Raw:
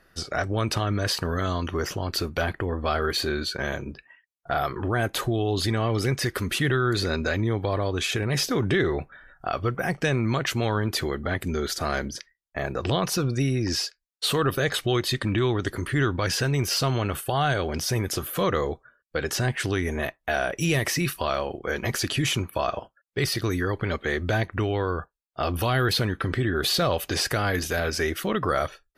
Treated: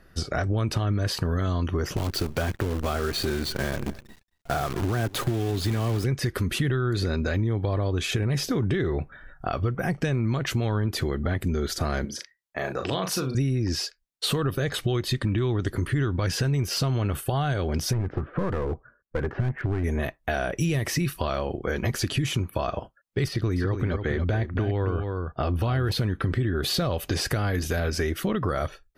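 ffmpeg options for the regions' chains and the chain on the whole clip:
ffmpeg -i in.wav -filter_complex "[0:a]asettb=1/sr,asplit=3[link_01][link_02][link_03];[link_01]atrim=end=1.964[link_04];[link_02]atrim=start=1.96:end=6.04,asetpts=PTS-STARTPTS,afade=type=in:duration=0.004:curve=qsin,afade=type=out:start_time=4.076:duration=0.004:curve=qsin,highpass=69,acrusher=bits=6:dc=4:mix=0:aa=0.000001,aecho=1:1:225:0.0668,atrim=end_sample=179928[link_05];[link_03]atrim=start=6.036[link_06];[link_04][link_05]acrossfade=duration=0.004:curve1=hsin:curve2=qsin[link_07];[link_07][link_06]acrossfade=duration=0.004:curve1=qsin:curve2=hsin,asettb=1/sr,asplit=3[link_08][link_09][link_10];[link_08]atrim=end=12.054[link_11];[link_09]atrim=start=12.05:end=13.35,asetpts=PTS-STARTPTS,afade=type=in:duration=0.004:curve=qsin,afade=type=out:start_time=1.296:duration=0.004:curve=qsin,highpass=frequency=540:poles=1,asplit=2[link_12][link_13];[link_13]adelay=38,volume=-6.5dB[link_14];[link_12][link_14]amix=inputs=2:normalize=0,atrim=end_sample=57330[link_15];[link_10]atrim=start=13.346[link_16];[link_11][link_15]acrossfade=duration=0.004:curve1=hsin:curve2=qsin[link_17];[link_17][link_16]acrossfade=duration=0.004:curve1=qsin:curve2=hsin,asettb=1/sr,asplit=3[link_18][link_19][link_20];[link_18]atrim=end=17.934[link_21];[link_19]atrim=start=17.93:end=19.84,asetpts=PTS-STARTPTS,afade=type=in:duration=0.004:curve=qsin,afade=type=out:start_time=1.906:duration=0.004:curve=qsin,lowpass=frequency=1800:width=0.5412,lowpass=frequency=1800:width=1.3066,aeval=exprs='clip(val(0),-1,0.0501)':channel_layout=same[link_22];[link_20]atrim=start=19.836[link_23];[link_21][link_22]acrossfade=duration=0.004:curve1=hsin:curve2=qsin[link_24];[link_24][link_23]acrossfade=duration=0.004:curve1=qsin:curve2=hsin,asettb=1/sr,asplit=3[link_25][link_26][link_27];[link_25]atrim=end=23.284[link_28];[link_26]atrim=start=23.28:end=25.92,asetpts=PTS-STARTPTS,afade=type=in:duration=0.004:curve=qsin,afade=type=out:start_time=2.636:duration=0.004:curve=qsin,aemphasis=mode=reproduction:type=50kf,aecho=1:1:280:0.398,atrim=end_sample=116424[link_29];[link_27]atrim=start=25.916[link_30];[link_28][link_29]acrossfade=duration=0.004:curve1=hsin:curve2=qsin[link_31];[link_31][link_30]acrossfade=duration=0.004:curve1=qsin:curve2=hsin,lowshelf=frequency=320:gain=10,acompressor=threshold=-23dB:ratio=4" out.wav

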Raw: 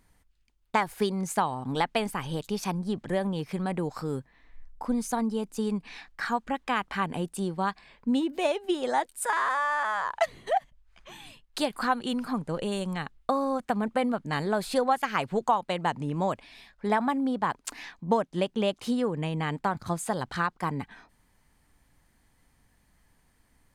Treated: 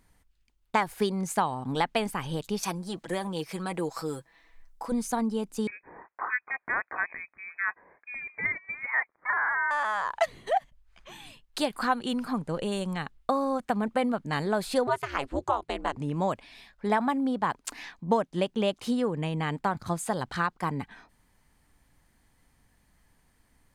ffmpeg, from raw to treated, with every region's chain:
ffmpeg -i in.wav -filter_complex "[0:a]asettb=1/sr,asplit=3[link_01][link_02][link_03];[link_01]atrim=end=2.634[link_04];[link_02]atrim=start=2.63:end=4.92,asetpts=PTS-STARTPTS,afade=type=in:duration=0.004:curve=qsin,afade=type=out:start_time=2.286:duration=0.004:curve=qsin,bass=frequency=250:gain=-11,treble=frequency=4000:gain=6,aecho=1:1:6.1:0.59,atrim=end_sample=100989[link_05];[link_03]atrim=start=4.916[link_06];[link_04][link_05]acrossfade=duration=0.004:curve1=hsin:curve2=qsin[link_07];[link_07][link_06]acrossfade=duration=0.004:curve1=qsin:curve2=hsin,asettb=1/sr,asplit=3[link_08][link_09][link_10];[link_08]atrim=end=5.674[link_11];[link_09]atrim=start=5.67:end=9.71,asetpts=PTS-STARTPTS,afade=type=in:duration=0.004:curve=qsin,afade=type=out:start_time=4.036:duration=0.004:curve=qsin,highpass=630,lowpass=frequency=2300:width_type=q:width=0.5098,lowpass=frequency=2300:width_type=q:width=0.6013,lowpass=frequency=2300:width_type=q:width=0.9,lowpass=frequency=2300:width_type=q:width=2.563,afreqshift=-2700[link_12];[link_10]atrim=start=9.706[link_13];[link_11][link_12]acrossfade=duration=0.004:curve1=hsin:curve2=qsin[link_14];[link_14][link_13]acrossfade=duration=0.004:curve1=qsin:curve2=hsin,asettb=1/sr,asplit=3[link_15][link_16][link_17];[link_15]atrim=end=14.874[link_18];[link_16]atrim=start=14.87:end=15.97,asetpts=PTS-STARTPTS,afade=type=in:duration=0.004:curve=qsin,afade=type=out:start_time=1.096:duration=0.004:curve=qsin,lowpass=frequency=12000:width=0.5412,lowpass=frequency=12000:width=1.3066,aeval=exprs='val(0)*sin(2*PI*140*n/s)':channel_layout=same[link_19];[link_17]atrim=start=15.966[link_20];[link_18][link_19]acrossfade=duration=0.004:curve1=hsin:curve2=qsin[link_21];[link_21][link_20]acrossfade=duration=0.004:curve1=qsin:curve2=hsin" out.wav

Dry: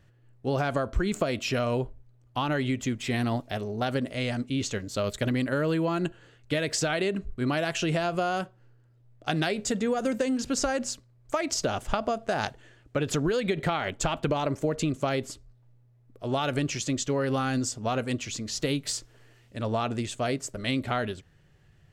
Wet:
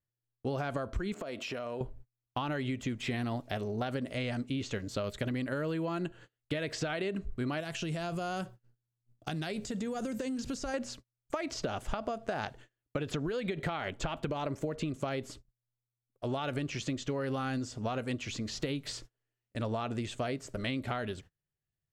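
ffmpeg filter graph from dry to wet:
ffmpeg -i in.wav -filter_complex "[0:a]asettb=1/sr,asplit=3[link_01][link_02][link_03];[link_01]atrim=end=1.134[link_04];[link_02]atrim=start=1.13:end=1.81,asetpts=PTS-STARTPTS,afade=type=in:duration=0.004:curve=qsin,afade=type=out:start_time=0.676:duration=0.004:curve=qsin,highpass=frequency=230:poles=1,equalizer=frequency=610:width=0.4:gain=6,acompressor=threshold=-35dB:ratio=6:attack=3.2:release=140:knee=1:detection=peak[link_05];[link_03]atrim=start=1.806[link_06];[link_04][link_05]acrossfade=duration=0.004:curve1=hsin:curve2=qsin[link_07];[link_07][link_06]acrossfade=duration=0.004:curve1=qsin:curve2=hsin,asettb=1/sr,asplit=3[link_08][link_09][link_10];[link_08]atrim=end=7.604[link_11];[link_09]atrim=start=7.6:end=10.74,asetpts=PTS-STARTPTS,afade=type=in:duration=0.004:curve=qsin,afade=type=out:start_time=3.136:duration=0.004:curve=qsin,bass=frequency=250:gain=6,treble=frequency=4000:gain=9,acompressor=threshold=-32dB:ratio=4:attack=3.2:release=140:knee=1:detection=peak[link_12];[link_10]atrim=start=10.736[link_13];[link_11][link_12]acrossfade=duration=0.004:curve1=hsin:curve2=qsin[link_14];[link_14][link_13]acrossfade=duration=0.004:curve1=qsin:curve2=hsin,acrossover=split=4100[link_15][link_16];[link_16]acompressor=threshold=-47dB:ratio=4:attack=1:release=60[link_17];[link_15][link_17]amix=inputs=2:normalize=0,agate=range=-32dB:threshold=-47dB:ratio=16:detection=peak,acompressor=threshold=-31dB:ratio=6" out.wav

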